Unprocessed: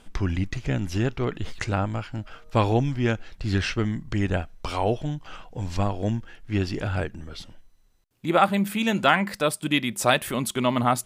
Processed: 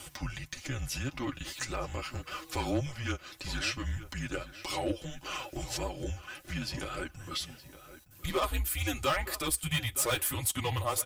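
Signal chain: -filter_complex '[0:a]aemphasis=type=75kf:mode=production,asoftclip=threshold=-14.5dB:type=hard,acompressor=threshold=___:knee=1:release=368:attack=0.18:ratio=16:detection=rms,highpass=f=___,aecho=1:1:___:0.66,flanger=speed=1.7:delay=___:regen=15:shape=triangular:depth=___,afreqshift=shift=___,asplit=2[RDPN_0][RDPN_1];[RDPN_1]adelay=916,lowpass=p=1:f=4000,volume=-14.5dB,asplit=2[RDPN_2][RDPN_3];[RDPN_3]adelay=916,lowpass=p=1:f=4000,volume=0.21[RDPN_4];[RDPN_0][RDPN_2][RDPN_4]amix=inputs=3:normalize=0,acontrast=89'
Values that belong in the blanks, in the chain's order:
-30dB, 210, 4.3, 5, 5.8, -140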